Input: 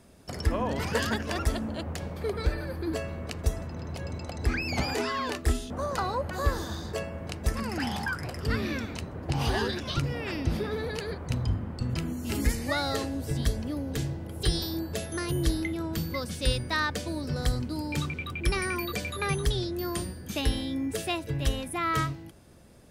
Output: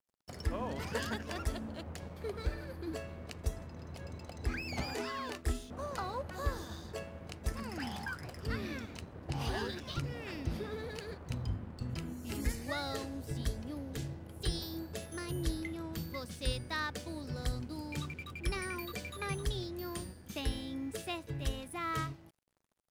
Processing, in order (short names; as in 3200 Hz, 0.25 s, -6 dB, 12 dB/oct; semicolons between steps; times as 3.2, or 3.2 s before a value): crossover distortion -48.5 dBFS; gain -8 dB